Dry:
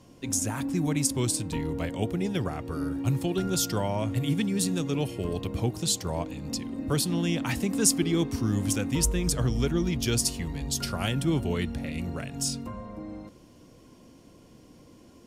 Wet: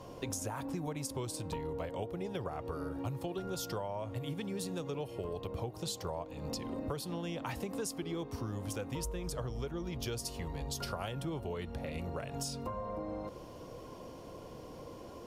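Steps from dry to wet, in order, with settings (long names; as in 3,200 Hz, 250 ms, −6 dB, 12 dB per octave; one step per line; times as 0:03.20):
octave-band graphic EQ 250/500/1,000/2,000/8,000 Hz −7/+7/+6/−3/−6 dB
downward compressor 10 to 1, threshold −40 dBFS, peak gain reduction 20 dB
level +4.5 dB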